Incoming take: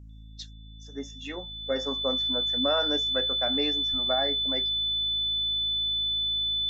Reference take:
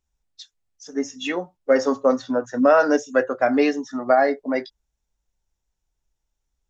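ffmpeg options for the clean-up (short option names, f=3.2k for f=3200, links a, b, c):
-filter_complex "[0:a]bandreject=f=54.1:t=h:w=4,bandreject=f=108.2:t=h:w=4,bandreject=f=162.3:t=h:w=4,bandreject=f=216.4:t=h:w=4,bandreject=f=270.5:t=h:w=4,bandreject=f=3.5k:w=30,asplit=3[a][b][c];[a]afade=t=out:st=3.9:d=0.02[d];[b]highpass=f=140:w=0.5412,highpass=f=140:w=1.3066,afade=t=in:st=3.9:d=0.02,afade=t=out:st=4.02:d=0.02[e];[c]afade=t=in:st=4.02:d=0.02[f];[d][e][f]amix=inputs=3:normalize=0,asetnsamples=n=441:p=0,asendcmd='0.53 volume volume 12dB',volume=0dB"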